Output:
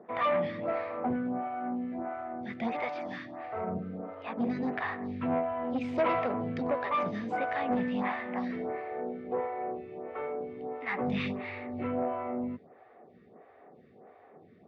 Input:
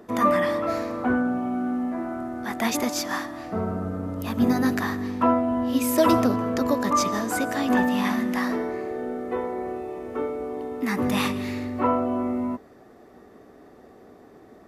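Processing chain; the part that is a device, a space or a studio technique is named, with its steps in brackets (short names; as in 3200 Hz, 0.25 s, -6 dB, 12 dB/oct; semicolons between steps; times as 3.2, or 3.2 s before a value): 3.78–4.84 HPF 190 Hz 12 dB/oct; vibe pedal into a guitar amplifier (photocell phaser 1.5 Hz; tube stage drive 20 dB, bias 0.35; speaker cabinet 95–3500 Hz, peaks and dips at 100 Hz +5 dB, 160 Hz +8 dB, 300 Hz -6 dB, 510 Hz +4 dB, 750 Hz +6 dB, 2200 Hz +7 dB); gain -4 dB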